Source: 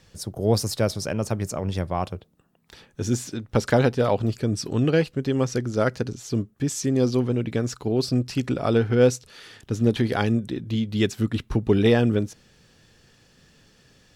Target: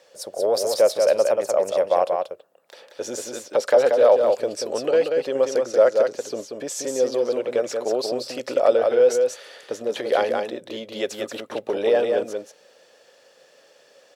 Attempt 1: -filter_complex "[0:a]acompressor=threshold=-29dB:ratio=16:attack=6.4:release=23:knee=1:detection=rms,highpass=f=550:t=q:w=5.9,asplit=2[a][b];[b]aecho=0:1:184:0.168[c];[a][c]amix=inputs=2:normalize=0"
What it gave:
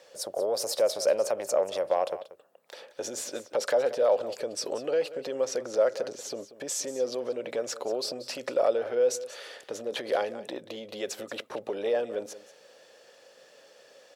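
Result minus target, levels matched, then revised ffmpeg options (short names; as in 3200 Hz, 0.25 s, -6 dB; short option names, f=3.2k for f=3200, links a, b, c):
compressor: peak gain reduction +8 dB; echo-to-direct -11 dB
-filter_complex "[0:a]acompressor=threshold=-20.5dB:ratio=16:attack=6.4:release=23:knee=1:detection=rms,highpass=f=550:t=q:w=5.9,asplit=2[a][b];[b]aecho=0:1:184:0.596[c];[a][c]amix=inputs=2:normalize=0"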